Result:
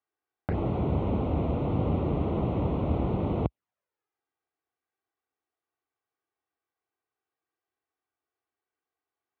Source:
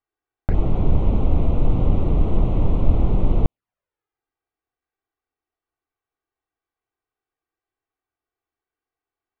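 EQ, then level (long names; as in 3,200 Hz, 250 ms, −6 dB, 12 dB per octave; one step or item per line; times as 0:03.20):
high-pass filter 63 Hz 24 dB per octave
high-frequency loss of the air 160 metres
low-shelf EQ 170 Hz −8 dB
0.0 dB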